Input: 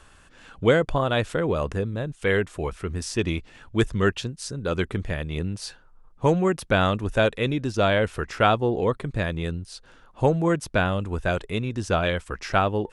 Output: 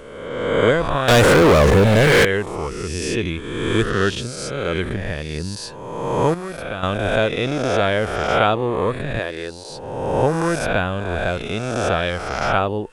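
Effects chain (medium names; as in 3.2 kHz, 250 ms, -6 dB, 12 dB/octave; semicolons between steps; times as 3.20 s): reverse spectral sustain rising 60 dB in 1.44 s; 1.08–2.25 s: waveshaping leveller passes 5; 6.34–6.83 s: feedback comb 170 Hz, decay 1.7 s, mix 70%; 9.19–9.70 s: resonant low shelf 250 Hz -11 dB, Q 1.5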